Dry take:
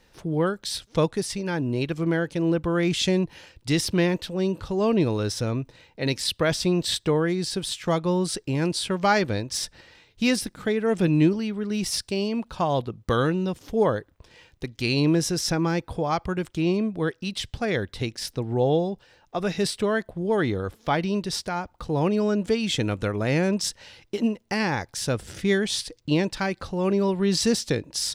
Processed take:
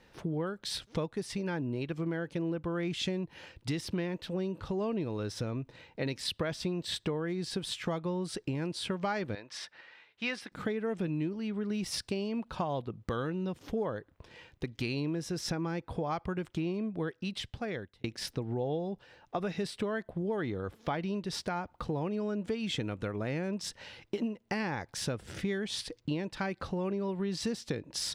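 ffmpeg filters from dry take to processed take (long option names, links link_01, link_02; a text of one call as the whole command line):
ffmpeg -i in.wav -filter_complex "[0:a]asettb=1/sr,asplit=3[link_01][link_02][link_03];[link_01]atrim=end=9.354[link_04];[link_02]atrim=start=9.35:end=10.52,asetpts=PTS-STARTPTS,afade=type=in:duration=0.004:curve=qsin,afade=type=out:start_time=1.166:duration=0.004:curve=qsin,bandpass=frequency=1700:width_type=q:width=0.8[link_05];[link_03]atrim=start=10.516[link_06];[link_04][link_05]acrossfade=duration=0.004:curve1=hsin:curve2=qsin[link_07];[link_07][link_06]acrossfade=duration=0.004:curve1=qsin:curve2=hsin,asplit=2[link_08][link_09];[link_08]atrim=end=18.04,asetpts=PTS-STARTPTS,afade=type=out:start_time=17.02:duration=1.02[link_10];[link_09]atrim=start=18.04,asetpts=PTS-STARTPTS,afade=type=in:duration=0.004:curve=hsin[link_11];[link_10][link_11]concat=n=2:v=0:a=1,bass=frequency=250:gain=2,treble=frequency=4000:gain=-8,acompressor=threshold=-30dB:ratio=6,lowshelf=frequency=64:gain=-11" out.wav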